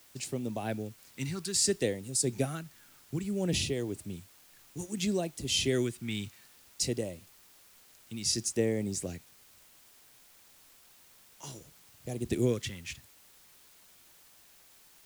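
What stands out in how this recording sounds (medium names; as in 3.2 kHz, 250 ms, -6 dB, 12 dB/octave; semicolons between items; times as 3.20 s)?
phasing stages 2, 0.6 Hz, lowest notch 580–1400 Hz; tremolo triangle 1.8 Hz, depth 50%; a quantiser's noise floor 10-bit, dither triangular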